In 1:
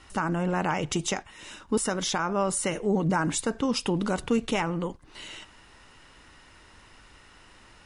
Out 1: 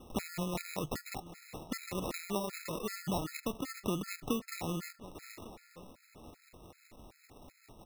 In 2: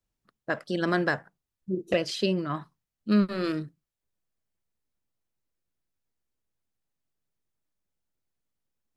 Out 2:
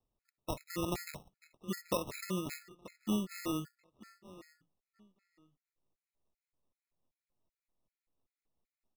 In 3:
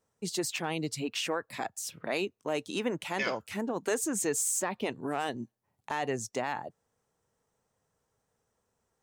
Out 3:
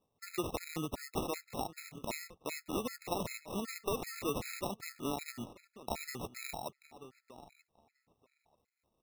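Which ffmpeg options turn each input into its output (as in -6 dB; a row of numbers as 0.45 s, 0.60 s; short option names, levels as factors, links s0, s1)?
-filter_complex "[0:a]acrusher=samples=28:mix=1:aa=0.000001,acompressor=threshold=0.0282:ratio=5,tremolo=f=5.1:d=0.39,highshelf=f=5300:g=6,asplit=2[s0][s1];[s1]adelay=935,lowpass=f=4500:p=1,volume=0.158,asplit=2[s2][s3];[s3]adelay=935,lowpass=f=4500:p=1,volume=0.18[s4];[s0][s2][s4]amix=inputs=3:normalize=0,afftfilt=real='re*gt(sin(2*PI*2.6*pts/sr)*(1-2*mod(floor(b*sr/1024/1300),2)),0)':imag='im*gt(sin(2*PI*2.6*pts/sr)*(1-2*mod(floor(b*sr/1024/1300),2)),0)':win_size=1024:overlap=0.75,volume=1.12"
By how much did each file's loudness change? -11.5 LU, -10.5 LU, -7.0 LU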